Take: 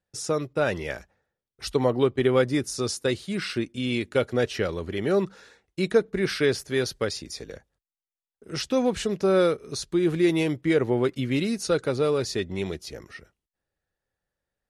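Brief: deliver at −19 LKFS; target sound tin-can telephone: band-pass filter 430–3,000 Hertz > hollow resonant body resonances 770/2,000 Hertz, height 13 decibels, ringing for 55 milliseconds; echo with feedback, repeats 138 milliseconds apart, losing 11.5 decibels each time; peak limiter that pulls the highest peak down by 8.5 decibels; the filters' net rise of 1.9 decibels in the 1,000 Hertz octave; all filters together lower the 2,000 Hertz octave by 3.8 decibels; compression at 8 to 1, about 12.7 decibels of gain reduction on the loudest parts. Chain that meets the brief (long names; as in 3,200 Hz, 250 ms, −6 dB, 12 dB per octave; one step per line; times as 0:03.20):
parametric band 1,000 Hz +5 dB
parametric band 2,000 Hz −6 dB
downward compressor 8 to 1, threshold −29 dBFS
brickwall limiter −26 dBFS
band-pass filter 430–3,000 Hz
repeating echo 138 ms, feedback 27%, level −11.5 dB
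hollow resonant body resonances 770/2,000 Hz, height 13 dB, ringing for 55 ms
level +20.5 dB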